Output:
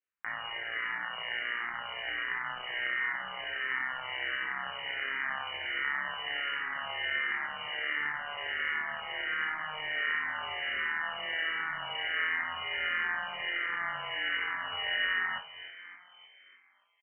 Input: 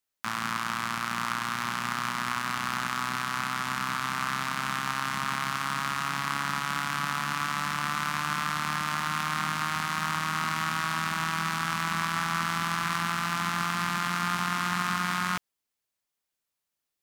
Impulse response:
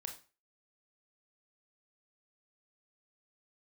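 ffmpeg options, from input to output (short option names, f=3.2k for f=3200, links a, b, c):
-filter_complex "[0:a]bandreject=f=57.53:t=h:w=4,bandreject=f=115.06:t=h:w=4,bandreject=f=172.59:t=h:w=4,bandreject=f=230.12:t=h:w=4,bandreject=f=287.65:t=h:w=4,bandreject=f=345.18:t=h:w=4,bandreject=f=402.71:t=h:w=4,bandreject=f=460.24:t=h:w=4,bandreject=f=517.77:t=h:w=4,bandreject=f=575.3:t=h:w=4,bandreject=f=632.83:t=h:w=4,bandreject=f=690.36:t=h:w=4,bandreject=f=747.89:t=h:w=4,bandreject=f=805.42:t=h:w=4,bandreject=f=862.95:t=h:w=4,bandreject=f=920.48:t=h:w=4,bandreject=f=978.01:t=h:w=4,bandreject=f=1.03554k:t=h:w=4,bandreject=f=1.09307k:t=h:w=4,bandreject=f=1.1506k:t=h:w=4,bandreject=f=1.20813k:t=h:w=4,bandreject=f=1.26566k:t=h:w=4,lowpass=f=2.6k:t=q:w=0.5098,lowpass=f=2.6k:t=q:w=0.6013,lowpass=f=2.6k:t=q:w=0.9,lowpass=f=2.6k:t=q:w=2.563,afreqshift=-3100,asplit=7[a][b][c][d][e][f][g];[b]adelay=292,afreqshift=40,volume=-15.5dB[h];[c]adelay=584,afreqshift=80,volume=-19.8dB[i];[d]adelay=876,afreqshift=120,volume=-24.1dB[j];[e]adelay=1168,afreqshift=160,volume=-28.4dB[k];[f]adelay=1460,afreqshift=200,volume=-32.7dB[l];[g]adelay=1752,afreqshift=240,volume=-37dB[m];[a][h][i][j][k][l][m]amix=inputs=7:normalize=0[n];[1:a]atrim=start_sample=2205,asetrate=66150,aresample=44100[o];[n][o]afir=irnorm=-1:irlink=0,asplit=2[p][q];[q]afreqshift=-1.4[r];[p][r]amix=inputs=2:normalize=1,volume=5.5dB"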